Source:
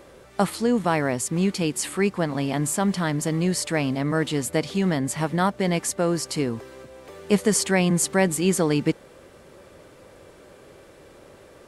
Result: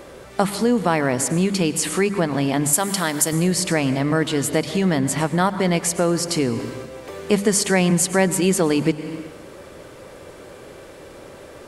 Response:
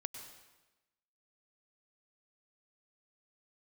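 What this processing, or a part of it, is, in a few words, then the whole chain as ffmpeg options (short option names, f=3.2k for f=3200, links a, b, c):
ducked reverb: -filter_complex "[0:a]bandreject=f=50:t=h:w=6,bandreject=f=100:t=h:w=6,bandreject=f=150:t=h:w=6,bandreject=f=200:t=h:w=6,asettb=1/sr,asplit=3[a][b][c];[a]atrim=end=2.734[d];[b]atrim=start=2.73:end=3.33,asetpts=PTS-STARTPTS,afade=t=in:d=0.004:c=qsin,afade=t=out:st=0.596:d=0.004:c=qsin,aemphasis=mode=production:type=bsi[e];[c]atrim=start=3.326[f];[d][e]acrossfade=d=0.004:c1=hsin:c2=qsin[g];[g][f]acrossfade=d=0.004:c1=qsin:c2=hsin,asplit=3[h][i][j];[1:a]atrim=start_sample=2205[k];[i][k]afir=irnorm=-1:irlink=0[l];[j]apad=whole_len=514702[m];[l][m]sidechaincompress=threshold=-27dB:ratio=8:attack=9:release=252,volume=6dB[n];[h][n]amix=inputs=2:normalize=0"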